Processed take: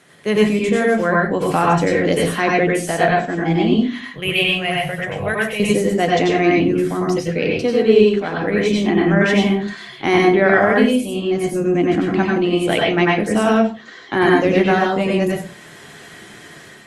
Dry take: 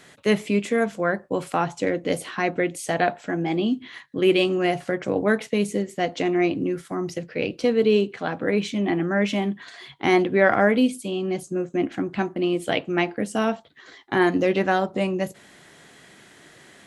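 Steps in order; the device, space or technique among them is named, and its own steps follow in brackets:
0:04.08–0:05.60: drawn EQ curve 150 Hz 0 dB, 260 Hz −22 dB, 650 Hz −5 dB, 1,300 Hz −7 dB, 2,800 Hz +3 dB, 4,400 Hz −10 dB, 7,400 Hz −7 dB, 12,000 Hz +8 dB
far-field microphone of a smart speaker (convolution reverb RT60 0.35 s, pre-delay 87 ms, DRR −2.5 dB; high-pass filter 95 Hz 12 dB per octave; automatic gain control gain up to 6 dB; Opus 32 kbit/s 48,000 Hz)

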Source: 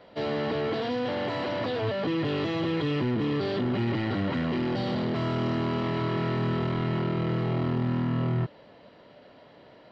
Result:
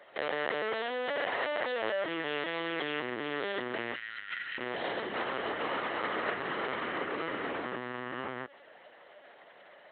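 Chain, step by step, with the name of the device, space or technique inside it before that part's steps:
0:03.94–0:04.59: Chebyshev band-stop filter 130–1,400 Hz, order 4
talking toy (linear-prediction vocoder at 8 kHz pitch kept; high-pass filter 500 Hz 12 dB per octave; parametric band 1,800 Hz +7 dB 0.53 octaves)

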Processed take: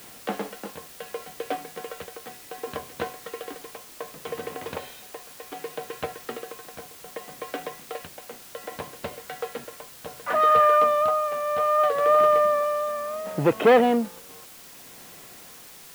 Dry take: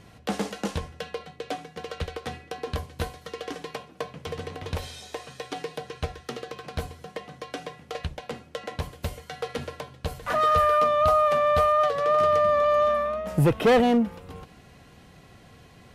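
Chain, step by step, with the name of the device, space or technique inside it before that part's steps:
shortwave radio (band-pass filter 260–2,700 Hz; amplitude tremolo 0.66 Hz, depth 67%; white noise bed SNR 20 dB)
level +3.5 dB

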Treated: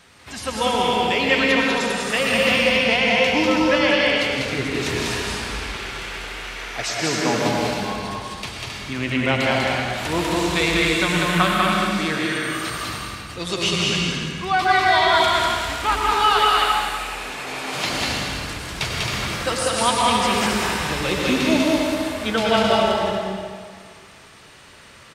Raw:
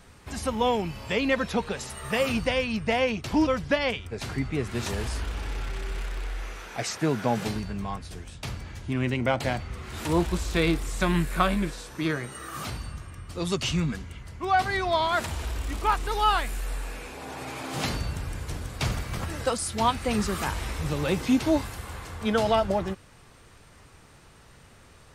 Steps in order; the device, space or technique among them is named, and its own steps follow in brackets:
stadium PA (high-pass filter 160 Hz 6 dB per octave; parametric band 3,100 Hz +7.5 dB 2.3 octaves; loudspeakers that aren't time-aligned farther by 67 metres −2 dB, 92 metres −5 dB; convolution reverb RT60 1.9 s, pre-delay 92 ms, DRR 0 dB)

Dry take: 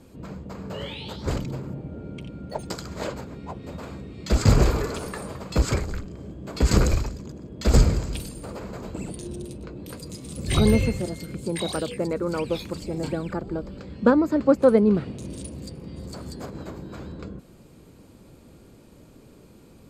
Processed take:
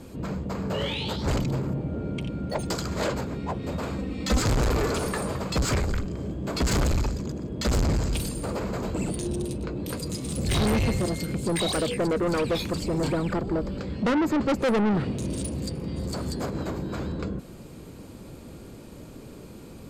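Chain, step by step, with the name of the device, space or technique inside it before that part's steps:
saturation between pre-emphasis and de-emphasis (high-shelf EQ 9,500 Hz +10 dB; soft clipping −27.5 dBFS, distortion −2 dB; high-shelf EQ 9,500 Hz −10 dB)
0:03.98–0:04.41: comb filter 3.9 ms, depth 71%
level +7 dB

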